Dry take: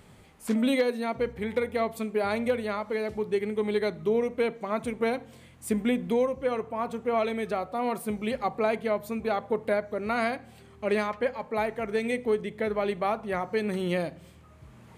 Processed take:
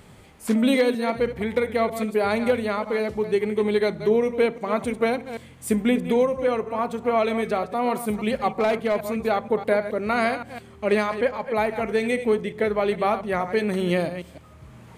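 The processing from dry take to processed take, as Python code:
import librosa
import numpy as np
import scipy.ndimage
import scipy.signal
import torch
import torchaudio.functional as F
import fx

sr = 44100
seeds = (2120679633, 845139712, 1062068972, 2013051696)

y = fx.reverse_delay(x, sr, ms=158, wet_db=-11.0)
y = fx.clip_hard(y, sr, threshold_db=-21.5, at=(8.5, 9.12))
y = y * librosa.db_to_amplitude(5.0)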